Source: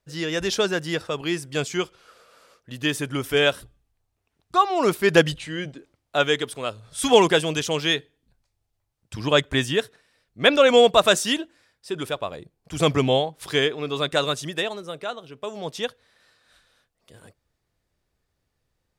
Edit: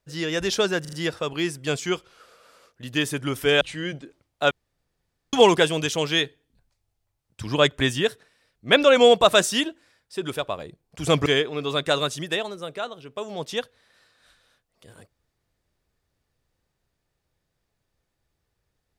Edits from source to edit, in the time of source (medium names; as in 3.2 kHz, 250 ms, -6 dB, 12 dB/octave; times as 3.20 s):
0.81 s: stutter 0.04 s, 4 plays
3.49–5.34 s: delete
6.24–7.06 s: room tone
12.99–13.52 s: delete